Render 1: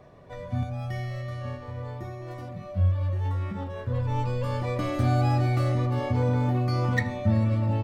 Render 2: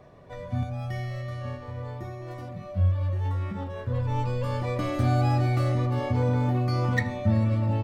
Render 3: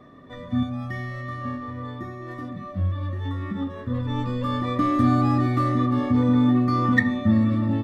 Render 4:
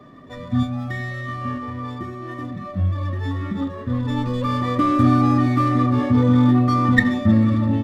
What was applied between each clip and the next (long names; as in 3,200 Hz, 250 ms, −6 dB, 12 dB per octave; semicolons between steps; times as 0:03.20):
no processing that can be heard
hollow resonant body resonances 260/1,200/1,800/3,500 Hz, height 17 dB, ringing for 40 ms; level −3.5 dB
spectral magnitudes quantised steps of 15 dB; windowed peak hold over 3 samples; level +4 dB